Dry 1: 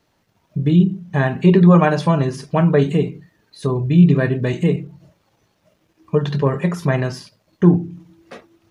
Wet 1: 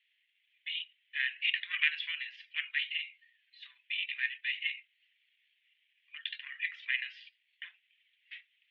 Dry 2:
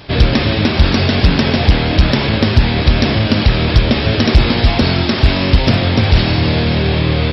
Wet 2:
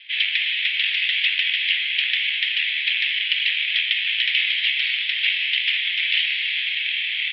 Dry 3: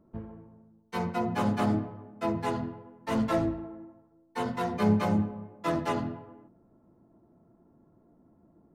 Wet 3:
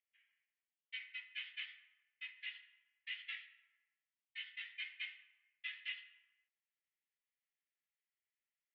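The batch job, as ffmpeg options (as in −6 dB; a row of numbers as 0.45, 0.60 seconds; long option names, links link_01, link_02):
-af "aeval=exprs='0.891*(cos(1*acos(clip(val(0)/0.891,-1,1)))-cos(1*PI/2))+0.126*(cos(3*acos(clip(val(0)/0.891,-1,1)))-cos(3*PI/2))+0.00794*(cos(7*acos(clip(val(0)/0.891,-1,1)))-cos(7*PI/2))':channel_layout=same,asuperpass=centerf=2500:order=8:qfactor=1.7,crystalizer=i=4.5:c=0"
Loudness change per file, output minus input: −17.5, −6.0, −16.5 LU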